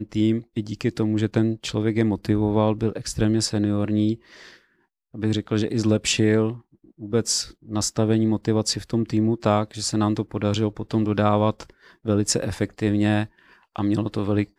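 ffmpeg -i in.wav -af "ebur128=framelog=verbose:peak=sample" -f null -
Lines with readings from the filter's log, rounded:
Integrated loudness:
  I:         -23.1 LUFS
  Threshold: -33.6 LUFS
Loudness range:
  LRA:         1.7 LU
  Threshold: -43.5 LUFS
  LRA low:   -24.5 LUFS
  LRA high:  -22.8 LUFS
Sample peak:
  Peak:       -4.5 dBFS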